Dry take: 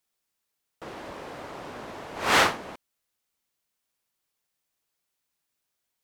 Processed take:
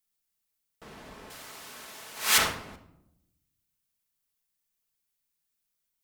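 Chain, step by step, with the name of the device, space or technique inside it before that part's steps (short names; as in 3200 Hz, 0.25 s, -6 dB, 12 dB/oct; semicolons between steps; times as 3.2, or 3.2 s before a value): 1.3–2.38 tilt +4 dB/oct; smiley-face EQ (low shelf 91 Hz +7 dB; bell 600 Hz -5 dB 2.3 oct; high shelf 8600 Hz +8 dB); shoebox room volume 2300 m³, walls furnished, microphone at 1.5 m; gain -6 dB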